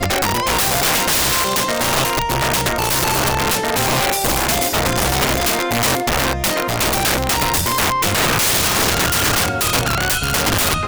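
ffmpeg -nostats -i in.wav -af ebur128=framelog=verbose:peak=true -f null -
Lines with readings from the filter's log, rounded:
Integrated loudness:
  I:         -16.0 LUFS
  Threshold: -26.0 LUFS
Loudness range:
  LRA:         1.2 LU
  Threshold: -36.1 LUFS
  LRA low:   -16.6 LUFS
  LRA high:  -15.4 LUFS
True peak:
  Peak:       -5.6 dBFS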